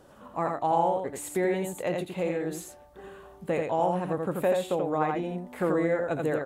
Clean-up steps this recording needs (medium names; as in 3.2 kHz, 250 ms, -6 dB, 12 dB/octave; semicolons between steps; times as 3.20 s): inverse comb 84 ms -3.5 dB